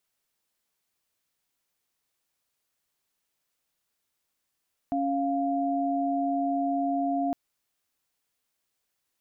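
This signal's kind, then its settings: chord C#4/F5 sine, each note -27 dBFS 2.41 s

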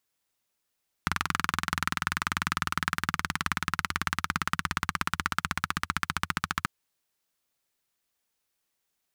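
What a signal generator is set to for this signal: single-cylinder engine model, changing speed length 5.59 s, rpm 2600, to 1700, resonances 86/160/1300 Hz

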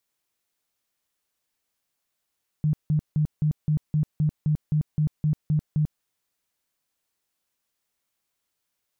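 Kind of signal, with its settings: tone bursts 152 Hz, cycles 14, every 0.26 s, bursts 13, -18.5 dBFS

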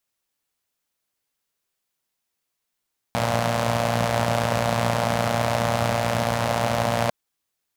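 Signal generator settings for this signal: four-cylinder engine model, steady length 3.95 s, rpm 3500, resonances 110/180/600 Hz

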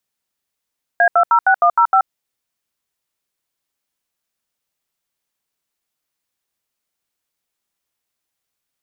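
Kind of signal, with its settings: DTMF "A206105", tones 79 ms, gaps 76 ms, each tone -11.5 dBFS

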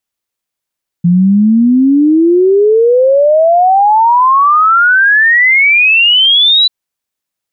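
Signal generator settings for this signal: log sweep 170 Hz -> 4 kHz 5.64 s -4.5 dBFS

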